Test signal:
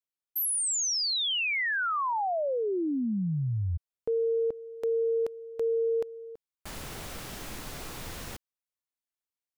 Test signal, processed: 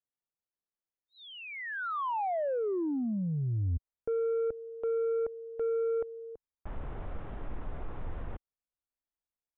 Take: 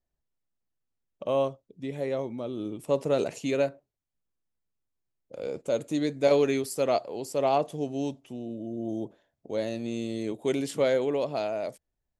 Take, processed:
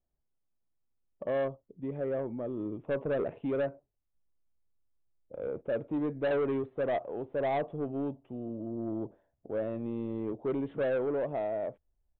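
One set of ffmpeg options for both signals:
-af "lowpass=1100,asubboost=boost=2.5:cutoff=89,aresample=8000,asoftclip=type=tanh:threshold=0.0531,aresample=44100"

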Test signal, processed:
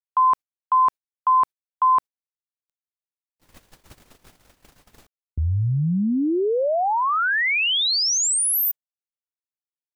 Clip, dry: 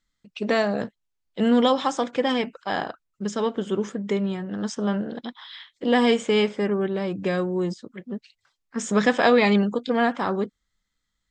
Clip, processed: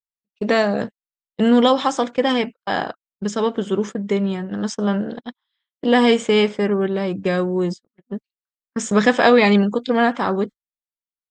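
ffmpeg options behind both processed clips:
-af "agate=range=0.01:threshold=0.0251:ratio=16:detection=peak,volume=1.68"

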